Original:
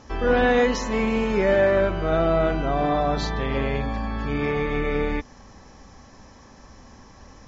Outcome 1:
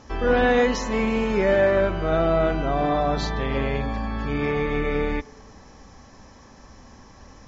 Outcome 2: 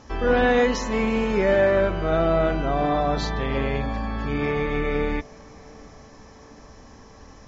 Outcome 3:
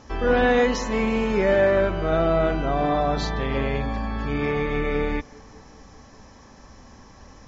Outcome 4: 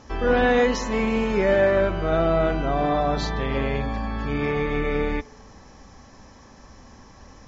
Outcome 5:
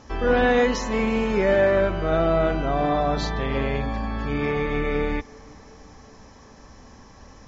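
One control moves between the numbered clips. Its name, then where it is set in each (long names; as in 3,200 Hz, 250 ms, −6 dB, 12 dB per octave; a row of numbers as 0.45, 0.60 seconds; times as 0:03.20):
tape delay, delay time: 98, 718, 202, 64, 379 milliseconds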